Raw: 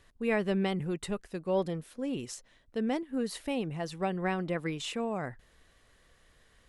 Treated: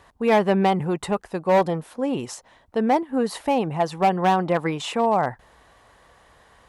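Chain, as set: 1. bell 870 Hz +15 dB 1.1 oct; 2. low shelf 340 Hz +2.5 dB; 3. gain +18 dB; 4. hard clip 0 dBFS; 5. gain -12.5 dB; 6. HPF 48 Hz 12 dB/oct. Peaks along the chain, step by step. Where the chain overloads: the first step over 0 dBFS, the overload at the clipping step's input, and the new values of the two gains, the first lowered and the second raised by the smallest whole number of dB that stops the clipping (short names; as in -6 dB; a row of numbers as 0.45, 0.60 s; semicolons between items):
-10.0, -9.5, +8.5, 0.0, -12.5, -10.5 dBFS; step 3, 8.5 dB; step 3 +9 dB, step 5 -3.5 dB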